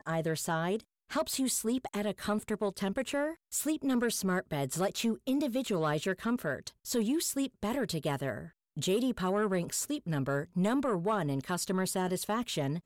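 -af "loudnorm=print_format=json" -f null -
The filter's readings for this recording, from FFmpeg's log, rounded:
"input_i" : "-32.4",
"input_tp" : "-21.5",
"input_lra" : "1.1",
"input_thresh" : "-42.5",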